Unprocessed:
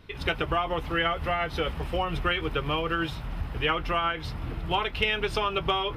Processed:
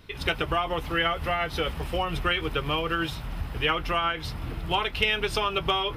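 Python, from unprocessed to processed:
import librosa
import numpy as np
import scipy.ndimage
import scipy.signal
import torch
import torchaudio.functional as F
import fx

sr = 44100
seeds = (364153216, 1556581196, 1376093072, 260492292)

y = fx.high_shelf(x, sr, hz=4600.0, db=8.5)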